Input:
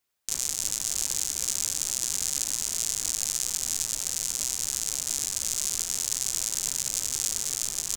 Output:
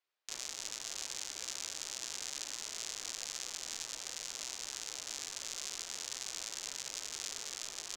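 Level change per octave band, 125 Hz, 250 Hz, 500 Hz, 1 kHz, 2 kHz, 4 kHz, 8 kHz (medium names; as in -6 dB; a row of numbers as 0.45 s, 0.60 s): -19.0 dB, -11.5 dB, -5.5 dB, -4.0 dB, -4.0 dB, -8.0 dB, -14.5 dB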